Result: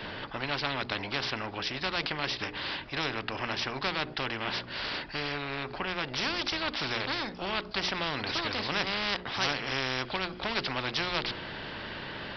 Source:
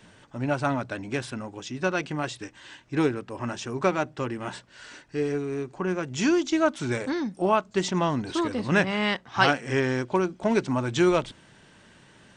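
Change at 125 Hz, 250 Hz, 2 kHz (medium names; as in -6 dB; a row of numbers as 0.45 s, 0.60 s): -9.0 dB, -12.0 dB, -1.5 dB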